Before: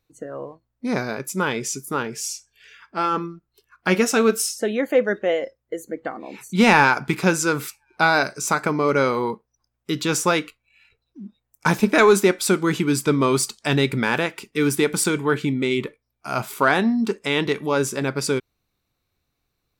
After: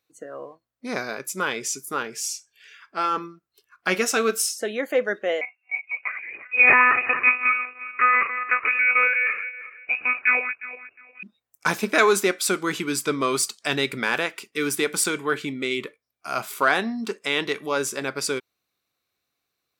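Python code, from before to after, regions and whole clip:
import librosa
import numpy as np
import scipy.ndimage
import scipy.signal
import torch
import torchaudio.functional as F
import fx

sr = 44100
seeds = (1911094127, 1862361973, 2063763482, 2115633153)

y = fx.chain(x, sr, fx.reverse_delay_fb(ms=178, feedback_pct=45, wet_db=-10),
    fx.freq_invert(carrier_hz=2700),
    fx.lpc_monotone(seeds[0], pitch_hz=250.0, order=16), at=(5.41, 11.23))
y = fx.highpass(y, sr, hz=610.0, slope=6)
y = fx.notch(y, sr, hz=900.0, q=9.7)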